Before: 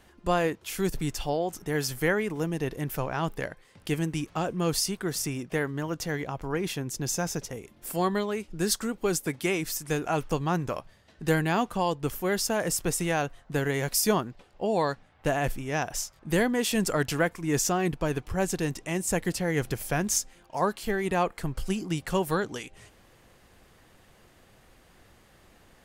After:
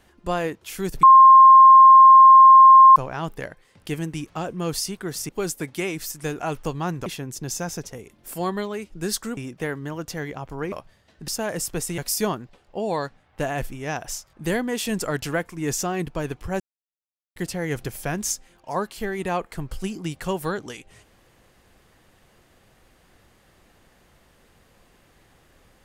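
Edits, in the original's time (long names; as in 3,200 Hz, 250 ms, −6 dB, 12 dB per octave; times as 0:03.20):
0:01.03–0:02.96: beep over 1,060 Hz −6 dBFS
0:05.29–0:06.64: swap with 0:08.95–0:10.72
0:11.28–0:12.39: remove
0:13.09–0:13.84: remove
0:18.46–0:19.22: silence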